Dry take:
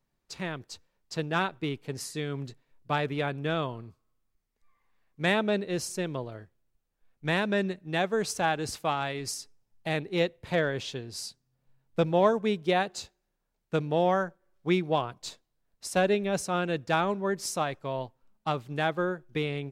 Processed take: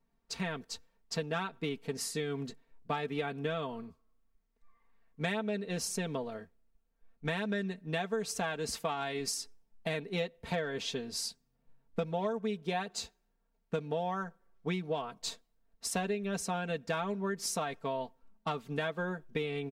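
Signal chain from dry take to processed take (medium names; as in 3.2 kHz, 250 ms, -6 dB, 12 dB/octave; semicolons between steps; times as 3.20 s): comb 4.4 ms, depth 76%; compression 6:1, threshold -31 dBFS, peak gain reduction 14.5 dB; tape noise reduction on one side only decoder only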